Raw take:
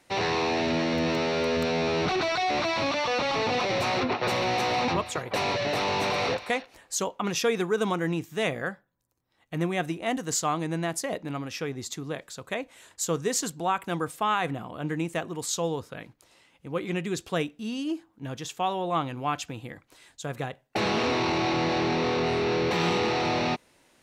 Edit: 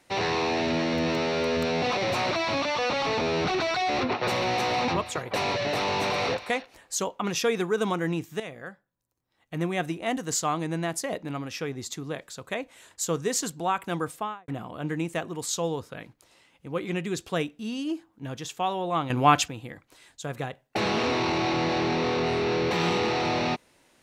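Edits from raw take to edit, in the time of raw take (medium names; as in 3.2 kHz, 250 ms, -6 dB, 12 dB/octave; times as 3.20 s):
1.82–2.60 s: swap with 3.50–3.99 s
8.40–9.78 s: fade in, from -13 dB
14.09–14.48 s: studio fade out
19.10–19.48 s: gain +10 dB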